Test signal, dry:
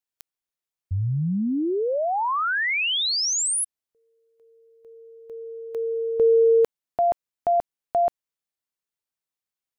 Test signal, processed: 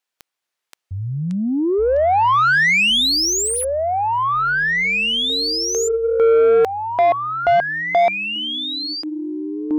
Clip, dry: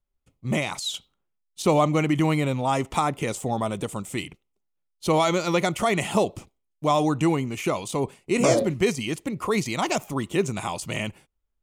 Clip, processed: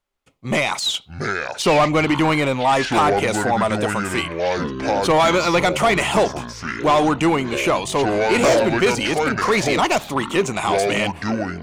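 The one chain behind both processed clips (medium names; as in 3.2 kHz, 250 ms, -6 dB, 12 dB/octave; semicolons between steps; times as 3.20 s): ever faster or slower copies 422 ms, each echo -7 st, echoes 3, each echo -6 dB; overdrive pedal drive 19 dB, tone 3.6 kHz, clips at -6.5 dBFS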